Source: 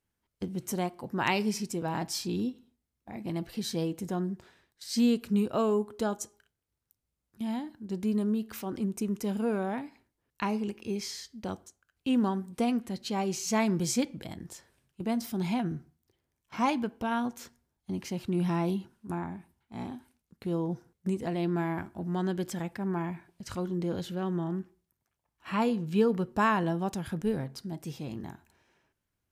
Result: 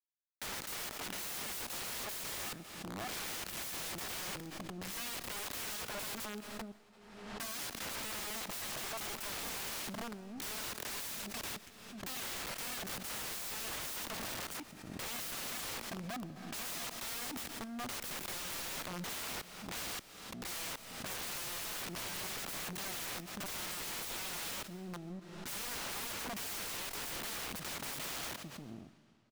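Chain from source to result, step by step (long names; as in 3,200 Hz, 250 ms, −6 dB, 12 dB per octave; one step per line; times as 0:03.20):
downward compressor 2 to 1, threshold −38 dBFS, peak gain reduction 10.5 dB
bit reduction 8 bits
parametric band 950 Hz −12 dB 1.4 octaves
phaser with its sweep stopped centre 1,900 Hz, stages 4
slap from a distant wall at 100 metres, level −23 dB
low-pass that shuts in the quiet parts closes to 740 Hz, open at −41 dBFS
octave-band graphic EQ 250/1,000/8,000 Hz +8/+4/−7 dB
leveller curve on the samples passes 2
wrap-around overflow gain 44.5 dB
on a send at −16 dB: convolution reverb RT60 2.7 s, pre-delay 85 ms
on the sum: background raised ahead of every attack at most 46 dB per second
level +8 dB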